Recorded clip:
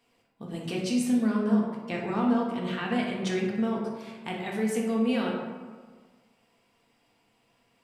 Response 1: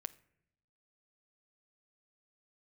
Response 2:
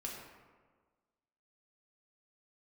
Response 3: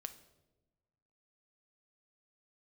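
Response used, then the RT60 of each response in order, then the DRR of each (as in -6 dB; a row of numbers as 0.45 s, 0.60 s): 2; 0.75 s, 1.5 s, 1.1 s; 12.5 dB, -2.5 dB, 8.5 dB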